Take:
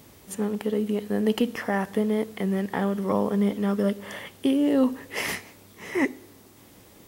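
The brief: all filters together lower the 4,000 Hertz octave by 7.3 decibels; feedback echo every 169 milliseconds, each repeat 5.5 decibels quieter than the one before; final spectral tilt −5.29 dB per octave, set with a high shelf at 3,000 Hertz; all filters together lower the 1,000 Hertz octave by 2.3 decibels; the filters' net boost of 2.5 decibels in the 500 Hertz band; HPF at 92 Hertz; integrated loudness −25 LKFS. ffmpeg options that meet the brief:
ffmpeg -i in.wav -af "highpass=92,equalizer=frequency=500:width_type=o:gain=4,equalizer=frequency=1000:width_type=o:gain=-3.5,highshelf=frequency=3000:gain=-6,equalizer=frequency=4000:width_type=o:gain=-6,aecho=1:1:169|338|507|676|845|1014|1183:0.531|0.281|0.149|0.079|0.0419|0.0222|0.0118,volume=-0.5dB" out.wav

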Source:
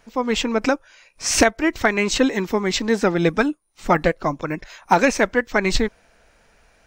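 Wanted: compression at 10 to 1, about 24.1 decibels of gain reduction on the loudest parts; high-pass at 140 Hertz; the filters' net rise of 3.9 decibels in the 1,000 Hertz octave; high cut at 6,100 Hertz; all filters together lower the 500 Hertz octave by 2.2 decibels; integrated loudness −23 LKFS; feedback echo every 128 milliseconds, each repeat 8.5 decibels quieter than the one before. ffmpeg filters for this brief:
ffmpeg -i in.wav -af "highpass=140,lowpass=6100,equalizer=frequency=500:width_type=o:gain=-4.5,equalizer=frequency=1000:width_type=o:gain=6.5,acompressor=threshold=-32dB:ratio=10,aecho=1:1:128|256|384|512:0.376|0.143|0.0543|0.0206,volume=13dB" out.wav

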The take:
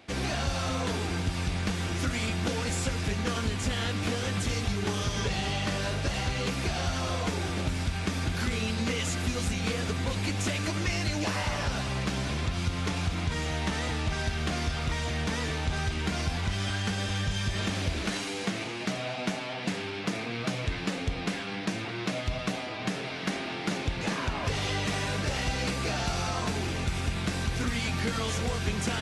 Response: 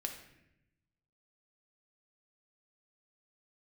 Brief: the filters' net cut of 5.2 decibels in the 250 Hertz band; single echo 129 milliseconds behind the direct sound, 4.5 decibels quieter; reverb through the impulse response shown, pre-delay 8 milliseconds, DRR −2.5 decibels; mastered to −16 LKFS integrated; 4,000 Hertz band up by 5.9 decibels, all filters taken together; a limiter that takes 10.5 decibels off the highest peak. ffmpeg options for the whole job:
-filter_complex "[0:a]equalizer=frequency=250:width_type=o:gain=-7.5,equalizer=frequency=4000:width_type=o:gain=7.5,alimiter=limit=-23dB:level=0:latency=1,aecho=1:1:129:0.596,asplit=2[link_01][link_02];[1:a]atrim=start_sample=2205,adelay=8[link_03];[link_02][link_03]afir=irnorm=-1:irlink=0,volume=3dB[link_04];[link_01][link_04]amix=inputs=2:normalize=0,volume=10dB"

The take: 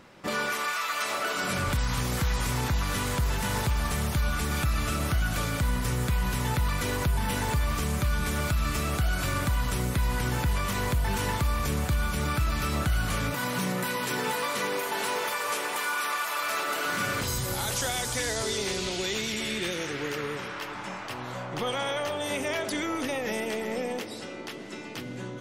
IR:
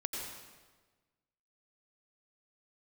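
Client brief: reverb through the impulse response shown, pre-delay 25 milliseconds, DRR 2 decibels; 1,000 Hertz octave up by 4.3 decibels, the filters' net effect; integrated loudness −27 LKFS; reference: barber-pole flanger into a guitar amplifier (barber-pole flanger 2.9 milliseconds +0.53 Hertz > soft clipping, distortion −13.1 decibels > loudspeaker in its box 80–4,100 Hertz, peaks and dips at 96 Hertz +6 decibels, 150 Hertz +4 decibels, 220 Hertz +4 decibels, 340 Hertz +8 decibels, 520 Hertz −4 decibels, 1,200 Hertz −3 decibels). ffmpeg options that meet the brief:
-filter_complex "[0:a]equalizer=frequency=1000:width_type=o:gain=7,asplit=2[link_01][link_02];[1:a]atrim=start_sample=2205,adelay=25[link_03];[link_02][link_03]afir=irnorm=-1:irlink=0,volume=-4dB[link_04];[link_01][link_04]amix=inputs=2:normalize=0,asplit=2[link_05][link_06];[link_06]adelay=2.9,afreqshift=0.53[link_07];[link_05][link_07]amix=inputs=2:normalize=1,asoftclip=threshold=-25dB,highpass=80,equalizer=frequency=96:width_type=q:width=4:gain=6,equalizer=frequency=150:width_type=q:width=4:gain=4,equalizer=frequency=220:width_type=q:width=4:gain=4,equalizer=frequency=340:width_type=q:width=4:gain=8,equalizer=frequency=520:width_type=q:width=4:gain=-4,equalizer=frequency=1200:width_type=q:width=4:gain=-3,lowpass=frequency=4100:width=0.5412,lowpass=frequency=4100:width=1.3066,volume=4.5dB"

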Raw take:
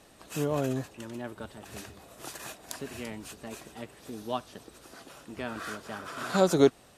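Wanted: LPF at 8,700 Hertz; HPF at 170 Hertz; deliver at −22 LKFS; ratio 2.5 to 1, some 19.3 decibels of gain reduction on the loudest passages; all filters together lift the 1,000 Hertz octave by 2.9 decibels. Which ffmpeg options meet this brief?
ffmpeg -i in.wav -af "highpass=170,lowpass=8700,equalizer=frequency=1000:width_type=o:gain=4,acompressor=threshold=-45dB:ratio=2.5,volume=23.5dB" out.wav

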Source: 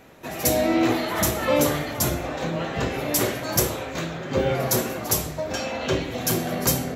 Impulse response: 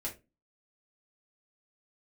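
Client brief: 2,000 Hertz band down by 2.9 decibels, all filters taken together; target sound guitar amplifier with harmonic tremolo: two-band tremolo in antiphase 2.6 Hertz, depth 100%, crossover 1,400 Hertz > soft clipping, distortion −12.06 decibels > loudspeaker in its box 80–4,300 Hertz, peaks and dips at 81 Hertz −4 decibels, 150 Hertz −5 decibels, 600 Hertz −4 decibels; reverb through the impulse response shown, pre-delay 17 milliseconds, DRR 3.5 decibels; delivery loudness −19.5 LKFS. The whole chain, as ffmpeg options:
-filter_complex "[0:a]equalizer=frequency=2000:width_type=o:gain=-3.5,asplit=2[link_01][link_02];[1:a]atrim=start_sample=2205,adelay=17[link_03];[link_02][link_03]afir=irnorm=-1:irlink=0,volume=-4.5dB[link_04];[link_01][link_04]amix=inputs=2:normalize=0,acrossover=split=1400[link_05][link_06];[link_05]aeval=exprs='val(0)*(1-1/2+1/2*cos(2*PI*2.6*n/s))':channel_layout=same[link_07];[link_06]aeval=exprs='val(0)*(1-1/2-1/2*cos(2*PI*2.6*n/s))':channel_layout=same[link_08];[link_07][link_08]amix=inputs=2:normalize=0,asoftclip=threshold=-20dB,highpass=80,equalizer=frequency=81:width_type=q:width=4:gain=-4,equalizer=frequency=150:width_type=q:width=4:gain=-5,equalizer=frequency=600:width_type=q:width=4:gain=-4,lowpass=frequency=4300:width=0.5412,lowpass=frequency=4300:width=1.3066,volume=13.5dB"

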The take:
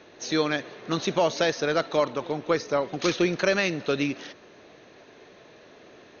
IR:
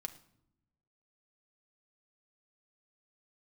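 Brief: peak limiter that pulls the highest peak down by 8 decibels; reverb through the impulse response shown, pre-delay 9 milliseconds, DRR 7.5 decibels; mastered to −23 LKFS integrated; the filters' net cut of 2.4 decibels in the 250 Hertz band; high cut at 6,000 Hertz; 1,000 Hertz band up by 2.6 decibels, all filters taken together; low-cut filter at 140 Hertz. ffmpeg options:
-filter_complex "[0:a]highpass=140,lowpass=6000,equalizer=frequency=250:width_type=o:gain=-3.5,equalizer=frequency=1000:width_type=o:gain=3.5,alimiter=limit=-16dB:level=0:latency=1,asplit=2[link_01][link_02];[1:a]atrim=start_sample=2205,adelay=9[link_03];[link_02][link_03]afir=irnorm=-1:irlink=0,volume=-5dB[link_04];[link_01][link_04]amix=inputs=2:normalize=0,volume=5dB"

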